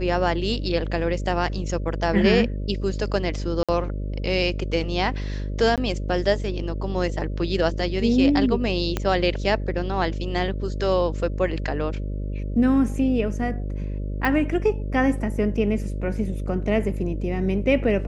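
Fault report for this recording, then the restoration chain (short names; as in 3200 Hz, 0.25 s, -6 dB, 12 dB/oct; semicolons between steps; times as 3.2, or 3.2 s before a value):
buzz 50 Hz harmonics 12 -28 dBFS
3.63–3.69 gap 56 ms
5.76–5.78 gap 17 ms
8.97 pop -10 dBFS
14.25 pop -12 dBFS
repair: de-click; de-hum 50 Hz, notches 12; interpolate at 3.63, 56 ms; interpolate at 5.76, 17 ms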